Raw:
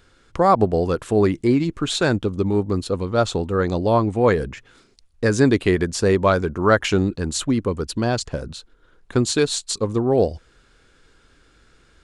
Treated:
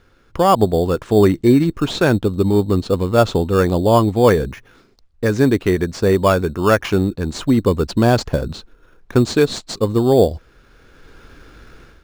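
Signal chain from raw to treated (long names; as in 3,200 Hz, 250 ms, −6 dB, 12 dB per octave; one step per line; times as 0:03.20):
high-frequency loss of the air 99 metres
in parallel at −6.5 dB: decimation without filtering 11×
on the sum: automatic gain control
level −1 dB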